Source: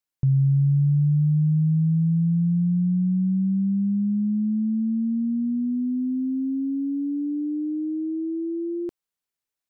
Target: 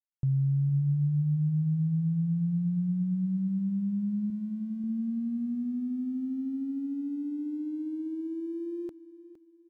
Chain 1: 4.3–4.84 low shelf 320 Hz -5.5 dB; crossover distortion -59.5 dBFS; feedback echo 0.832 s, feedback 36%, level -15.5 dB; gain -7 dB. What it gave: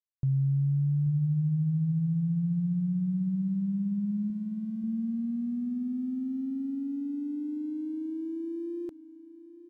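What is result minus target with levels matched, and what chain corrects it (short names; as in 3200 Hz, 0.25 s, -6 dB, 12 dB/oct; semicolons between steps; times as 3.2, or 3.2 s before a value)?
echo 0.37 s late
4.3–4.84 low shelf 320 Hz -5.5 dB; crossover distortion -59.5 dBFS; feedback echo 0.462 s, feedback 36%, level -15.5 dB; gain -7 dB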